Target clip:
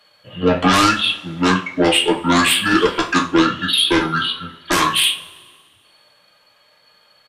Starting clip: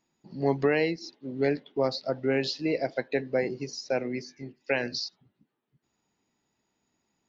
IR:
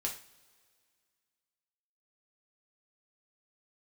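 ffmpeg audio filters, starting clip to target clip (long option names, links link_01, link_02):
-filter_complex "[0:a]acrossover=split=190|840[link_01][link_02][link_03];[link_03]aeval=exprs='0.15*sin(PI/2*7.08*val(0)/0.15)':channel_layout=same[link_04];[link_01][link_02][link_04]amix=inputs=3:normalize=0,asetrate=28595,aresample=44100,atempo=1.54221[link_05];[1:a]atrim=start_sample=2205,asetrate=52920,aresample=44100[link_06];[link_05][link_06]afir=irnorm=-1:irlink=0,volume=5.5dB"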